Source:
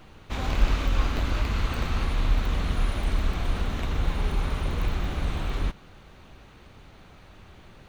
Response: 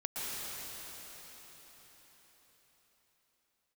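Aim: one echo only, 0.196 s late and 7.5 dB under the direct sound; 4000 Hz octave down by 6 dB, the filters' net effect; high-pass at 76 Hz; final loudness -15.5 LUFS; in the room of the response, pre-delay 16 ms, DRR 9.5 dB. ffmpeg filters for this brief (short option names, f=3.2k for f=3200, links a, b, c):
-filter_complex "[0:a]highpass=76,equalizer=f=4k:t=o:g=-8,aecho=1:1:196:0.422,asplit=2[a][b];[1:a]atrim=start_sample=2205,adelay=16[c];[b][c]afir=irnorm=-1:irlink=0,volume=-14.5dB[d];[a][d]amix=inputs=2:normalize=0,volume=16.5dB"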